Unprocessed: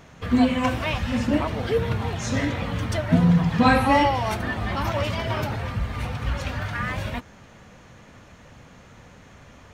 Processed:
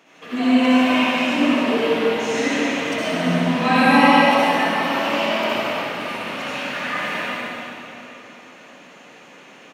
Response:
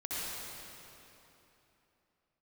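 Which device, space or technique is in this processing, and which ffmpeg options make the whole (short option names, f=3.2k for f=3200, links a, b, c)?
stadium PA: -filter_complex "[0:a]highpass=f=230:w=0.5412,highpass=f=230:w=1.3066,equalizer=f=2.7k:t=o:w=0.48:g=8,aecho=1:1:148.7|274.1:0.316|0.316[a];[1:a]atrim=start_sample=2205[b];[a][b]afir=irnorm=-1:irlink=0"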